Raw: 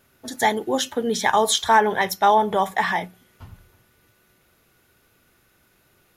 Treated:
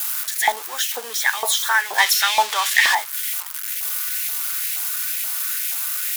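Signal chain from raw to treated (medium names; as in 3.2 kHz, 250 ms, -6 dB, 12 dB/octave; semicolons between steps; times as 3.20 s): zero-crossing glitches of -16.5 dBFS; 1.98–2.95 s: frequency weighting D; LFO high-pass saw up 2.1 Hz 740–2300 Hz; trim -2 dB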